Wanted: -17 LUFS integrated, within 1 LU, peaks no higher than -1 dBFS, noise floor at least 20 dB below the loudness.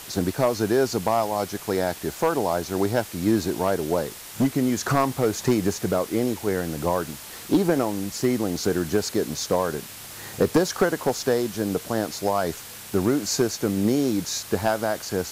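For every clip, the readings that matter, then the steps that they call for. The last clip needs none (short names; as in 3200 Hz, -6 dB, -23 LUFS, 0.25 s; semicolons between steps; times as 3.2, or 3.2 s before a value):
clipped 0.5%; flat tops at -12.0 dBFS; noise floor -40 dBFS; noise floor target -45 dBFS; loudness -24.5 LUFS; peak -12.0 dBFS; loudness target -17.0 LUFS
-> clip repair -12 dBFS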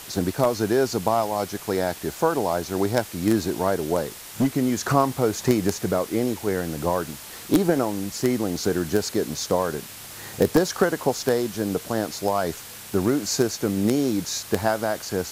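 clipped 0.0%; noise floor -40 dBFS; noise floor target -44 dBFS
-> denoiser 6 dB, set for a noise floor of -40 dBFS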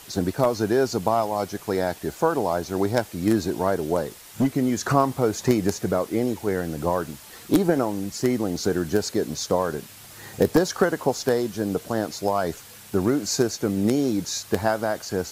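noise floor -45 dBFS; loudness -24.0 LUFS; peak -3.0 dBFS; loudness target -17.0 LUFS
-> gain +7 dB; limiter -1 dBFS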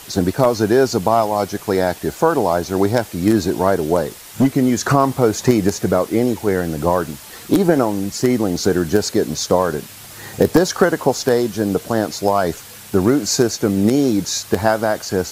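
loudness -17.5 LUFS; peak -1.0 dBFS; noise floor -38 dBFS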